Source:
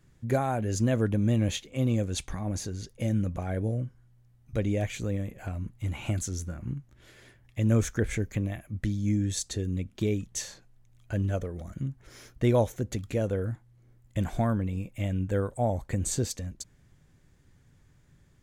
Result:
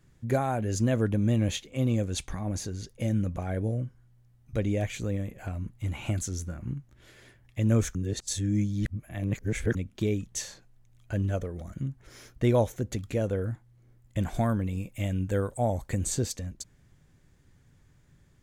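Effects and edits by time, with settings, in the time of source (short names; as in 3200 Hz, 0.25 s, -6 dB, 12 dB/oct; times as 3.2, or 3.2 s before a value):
7.95–9.75 reverse
14.34–16.05 high shelf 4000 Hz +6.5 dB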